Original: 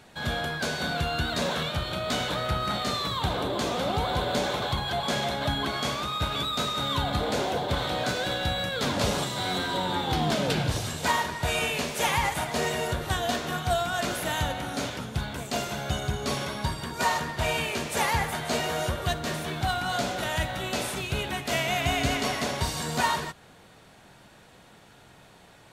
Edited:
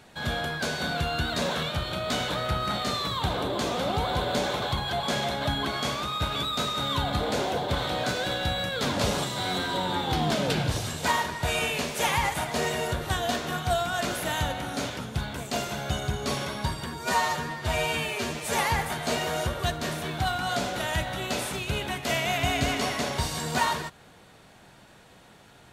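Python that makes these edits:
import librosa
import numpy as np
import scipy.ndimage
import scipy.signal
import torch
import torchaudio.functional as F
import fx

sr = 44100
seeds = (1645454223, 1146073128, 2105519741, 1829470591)

y = fx.edit(x, sr, fx.stretch_span(start_s=16.86, length_s=1.15, factor=1.5), tone=tone)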